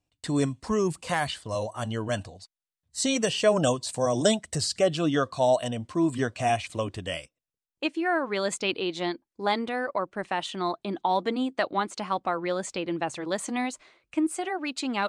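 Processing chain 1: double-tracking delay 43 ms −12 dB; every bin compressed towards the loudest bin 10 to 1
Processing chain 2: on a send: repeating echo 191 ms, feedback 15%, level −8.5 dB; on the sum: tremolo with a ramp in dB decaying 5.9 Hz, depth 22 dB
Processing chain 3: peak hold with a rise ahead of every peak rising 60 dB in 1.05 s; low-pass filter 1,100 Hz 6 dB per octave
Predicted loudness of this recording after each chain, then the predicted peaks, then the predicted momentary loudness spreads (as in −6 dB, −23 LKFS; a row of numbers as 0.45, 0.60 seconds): −28.0, −35.0, −27.0 LKFS; −9.5, −12.0, −10.0 dBFS; 7, 10, 9 LU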